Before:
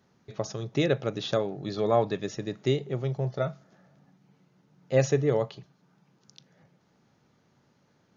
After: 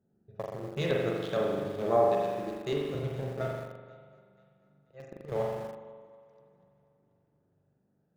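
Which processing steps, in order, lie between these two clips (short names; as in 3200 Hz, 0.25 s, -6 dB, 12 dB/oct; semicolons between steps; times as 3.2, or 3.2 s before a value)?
Wiener smoothing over 41 samples; 3.47–5.32 auto swell 0.652 s; notches 60/120/180/240/300 Hz; 1.96–2.95 HPF 160 Hz 12 dB/oct; on a send: thinning echo 0.243 s, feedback 63%, high-pass 260 Hz, level -15.5 dB; on the sum: LFO notch square 2.2 Hz 280–3100 Hz; spring tank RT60 1.5 s, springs 41 ms, chirp 65 ms, DRR -2.5 dB; in parallel at -9 dB: sample gate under -31 dBFS; on the sum: gain -7 dB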